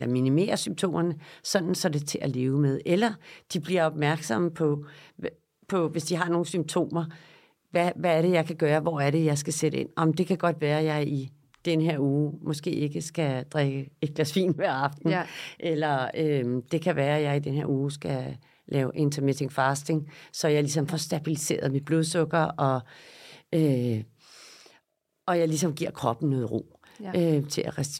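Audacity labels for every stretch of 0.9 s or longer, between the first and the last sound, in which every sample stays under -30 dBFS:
24.010000	25.280000	silence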